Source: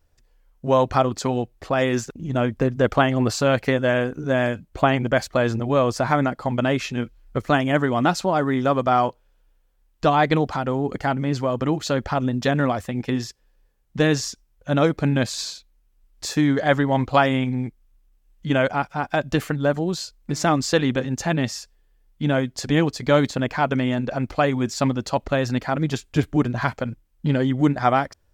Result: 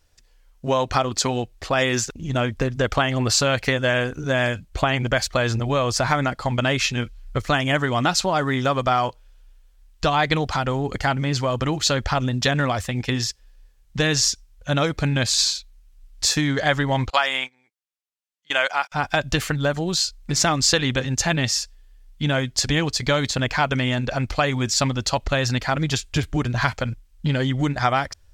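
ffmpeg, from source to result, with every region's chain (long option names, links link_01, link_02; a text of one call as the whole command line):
ffmpeg -i in.wav -filter_complex "[0:a]asettb=1/sr,asplit=3[link_01][link_02][link_03];[link_01]atrim=end=17.104[link_04];[link_02]atrim=start=17.1:end=18.92,asetpts=PTS-STARTPTS,afade=type=in:duration=0.004:curve=qsin,afade=type=out:start_time=1.816:duration=0.004:curve=qsin,highpass=700,agate=range=-22dB:threshold=-38dB:ratio=16:release=100:detection=peak[link_05];[link_03]atrim=start=18.916[link_06];[link_04][link_05]acrossfade=duration=0.004:curve1=hsin:curve2=qsin[link_07];[link_07][link_06]acrossfade=duration=0.004:curve1=qsin:curve2=hsin,asubboost=boost=3.5:cutoff=110,acompressor=threshold=-18dB:ratio=6,equalizer=frequency=5200:width=0.32:gain=10.5" out.wav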